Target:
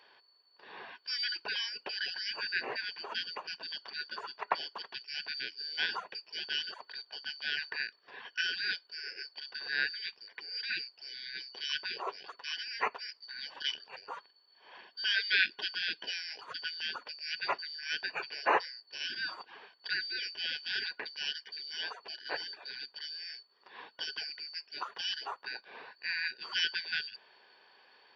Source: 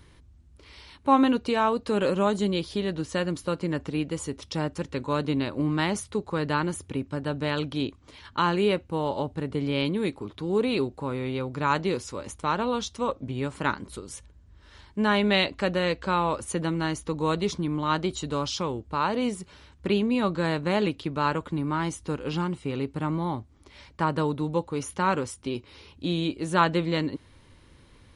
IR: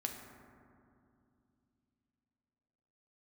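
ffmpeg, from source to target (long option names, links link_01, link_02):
-af "afftfilt=real='real(if(lt(b,272),68*(eq(floor(b/68),0)*3+eq(floor(b/68),1)*2+eq(floor(b/68),2)*1+eq(floor(b/68),3)*0)+mod(b,68),b),0)':imag='imag(if(lt(b,272),68*(eq(floor(b/68),0)*3+eq(floor(b/68),1)*2+eq(floor(b/68),2)*1+eq(floor(b/68),3)*0)+mod(b,68),b),0)':win_size=2048:overlap=0.75,highpass=360,equalizer=frequency=410:width_type=q:width=4:gain=7,equalizer=frequency=1000:width_type=q:width=4:gain=7,equalizer=frequency=2200:width_type=q:width=4:gain=-8,lowpass=frequency=2500:width=0.5412,lowpass=frequency=2500:width=1.3066,volume=7dB"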